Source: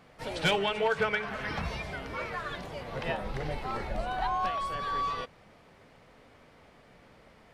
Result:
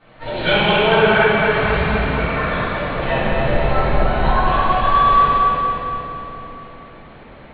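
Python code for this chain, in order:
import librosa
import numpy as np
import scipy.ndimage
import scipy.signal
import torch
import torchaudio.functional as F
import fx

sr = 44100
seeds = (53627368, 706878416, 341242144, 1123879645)

y = scipy.signal.sosfilt(scipy.signal.butter(16, 4200.0, 'lowpass', fs=sr, output='sos'), x)
y = fx.echo_feedback(y, sr, ms=230, feedback_pct=59, wet_db=-6)
y = fx.room_shoebox(y, sr, seeds[0], volume_m3=130.0, walls='hard', distance_m=2.5)
y = y * librosa.db_to_amplitude(-2.0)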